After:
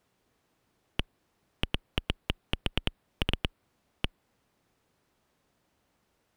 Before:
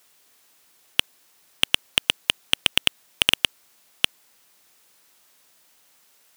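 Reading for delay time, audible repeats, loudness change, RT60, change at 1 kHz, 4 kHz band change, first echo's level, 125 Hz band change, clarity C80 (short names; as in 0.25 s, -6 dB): none, none, -13.0 dB, none, -7.5 dB, -15.5 dB, none, +7.0 dB, none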